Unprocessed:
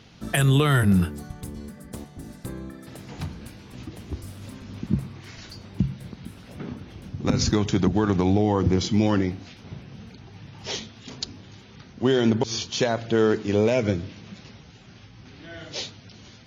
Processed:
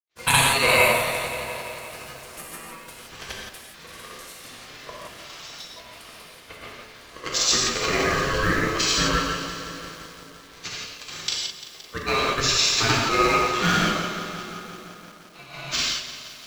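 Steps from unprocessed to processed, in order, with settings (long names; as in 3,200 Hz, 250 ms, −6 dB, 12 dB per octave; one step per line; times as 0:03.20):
downward expander −37 dBFS
high-pass filter 830 Hz 12 dB per octave
ring modulation 810 Hz
in parallel at −7.5 dB: log-companded quantiser 4 bits
on the sum: granular cloud, pitch spread up and down by 0 semitones
on a send: tape delay 302 ms, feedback 72%, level −14 dB, low-pass 2,100 Hz
on the sum: reverb whose tail is shaped and stops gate 190 ms flat, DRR −3 dB
feedback echo at a low word length 173 ms, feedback 80%, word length 8 bits, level −13 dB
level +6 dB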